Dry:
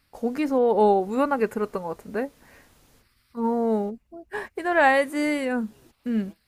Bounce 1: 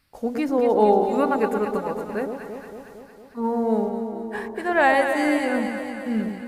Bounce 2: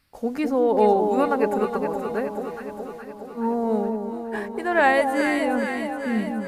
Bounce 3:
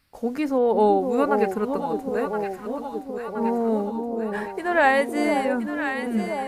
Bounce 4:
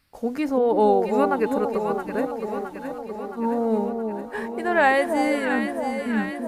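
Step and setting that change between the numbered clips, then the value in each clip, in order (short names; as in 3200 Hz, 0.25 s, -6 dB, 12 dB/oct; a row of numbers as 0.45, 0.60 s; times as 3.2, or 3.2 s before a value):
echo with dull and thin repeats by turns, time: 0.114, 0.209, 0.51, 0.334 s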